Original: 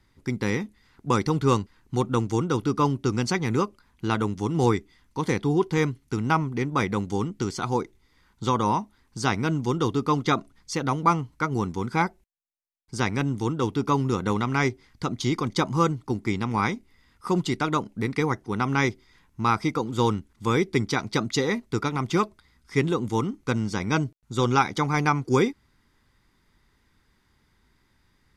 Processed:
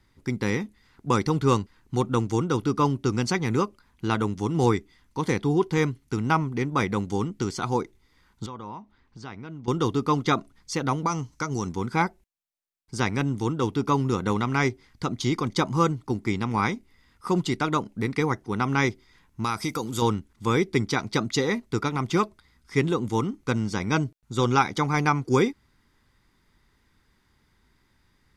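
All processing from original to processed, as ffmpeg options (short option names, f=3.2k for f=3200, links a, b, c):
-filter_complex "[0:a]asettb=1/sr,asplit=3[a][b][c];[a]atrim=end=8.464[d];[b]atrim=start=8.46:end=9.68,asetpts=PTS-STARTPTS,afade=t=in:d=0.004:c=qsin,afade=t=out:st=1.216:d=0.004:c=qsin,lowpass=3.8k,acompressor=threshold=-47dB:ratio=2:attack=3.2:release=140:knee=1:detection=peak[e];[c]atrim=start=9.676[f];[d][e]acrossfade=d=0.004:c1=hsin:c2=qsin[g];[g][f]acrossfade=d=0.004:c1=qsin:c2=hsin,asettb=1/sr,asplit=3[h][i][j];[h]atrim=end=11.064[k];[i]atrim=start=11.06:end=11.69,asetpts=PTS-STARTPTS,afade=t=in:d=0.004:c=qsin,afade=t=out:st=0.626:d=0.004:c=qsin,equalizer=f=6.1k:t=o:w=0.72:g=14.5,acompressor=threshold=-24dB:ratio=2.5:attack=3.2:release=140:knee=1:detection=peak[l];[j]atrim=start=11.686[m];[k][l]acrossfade=d=0.004:c1=hsin:c2=qsin[n];[n][m]acrossfade=d=0.004:c1=qsin:c2=hsin,asettb=1/sr,asplit=3[o][p][q];[o]atrim=end=19.444[r];[p]atrim=start=19.44:end=20.02,asetpts=PTS-STARTPTS,afade=t=in:d=0.004:c=qsin,afade=t=out:st=0.576:d=0.004:c=qsin,aemphasis=mode=production:type=75fm,acompressor=threshold=-24dB:ratio=2.5:attack=3.2:release=140:knee=1:detection=peak[s];[q]atrim=start=20.016[t];[r][s]acrossfade=d=0.004:c1=hsin:c2=qsin[u];[u][t]acrossfade=d=0.004:c1=qsin:c2=hsin"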